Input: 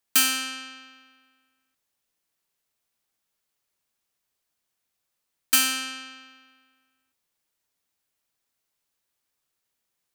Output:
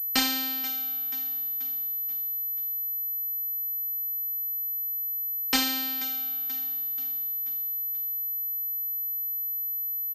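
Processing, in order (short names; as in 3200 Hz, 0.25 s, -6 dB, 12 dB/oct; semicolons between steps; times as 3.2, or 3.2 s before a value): spectral whitening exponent 0.3; formant shift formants +2 st; feedback echo 0.483 s, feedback 50%, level -15 dB; pulse-width modulation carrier 12000 Hz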